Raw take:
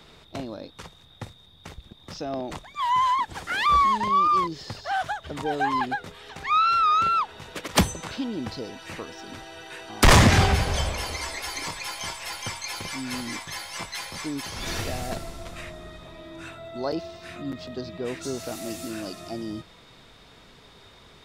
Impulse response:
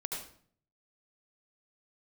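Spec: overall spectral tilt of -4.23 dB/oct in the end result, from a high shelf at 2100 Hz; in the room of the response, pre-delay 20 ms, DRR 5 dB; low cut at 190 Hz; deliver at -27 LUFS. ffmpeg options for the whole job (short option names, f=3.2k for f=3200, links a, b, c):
-filter_complex "[0:a]highpass=190,highshelf=f=2.1k:g=-7.5,asplit=2[a][b];[1:a]atrim=start_sample=2205,adelay=20[c];[b][c]afir=irnorm=-1:irlink=0,volume=-6.5dB[d];[a][d]amix=inputs=2:normalize=0"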